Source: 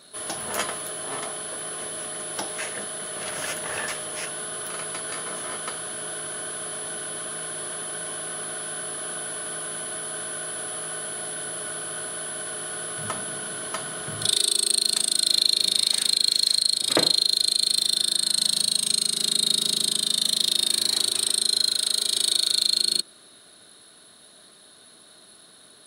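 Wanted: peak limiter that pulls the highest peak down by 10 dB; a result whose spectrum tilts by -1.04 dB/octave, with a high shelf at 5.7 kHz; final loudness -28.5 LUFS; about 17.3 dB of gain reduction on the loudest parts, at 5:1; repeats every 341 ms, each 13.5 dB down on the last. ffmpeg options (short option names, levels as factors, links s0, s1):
-af "highshelf=f=5700:g=-5.5,acompressor=threshold=0.0126:ratio=5,alimiter=level_in=2.66:limit=0.0631:level=0:latency=1,volume=0.376,aecho=1:1:341|682:0.211|0.0444,volume=4.47"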